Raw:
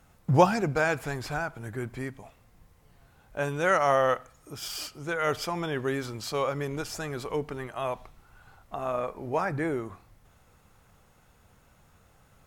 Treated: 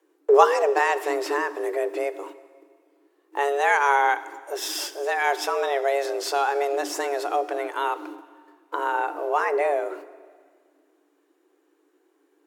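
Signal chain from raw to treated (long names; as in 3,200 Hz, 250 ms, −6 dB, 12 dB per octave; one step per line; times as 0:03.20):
noise gate −50 dBFS, range −18 dB
low-shelf EQ 300 Hz +7 dB
in parallel at +2 dB: downward compressor, threshold −33 dBFS, peak gain reduction 20 dB
on the sum: frequency shifter +280 Hz
dense smooth reverb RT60 1.8 s, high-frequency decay 0.95×, DRR 15 dB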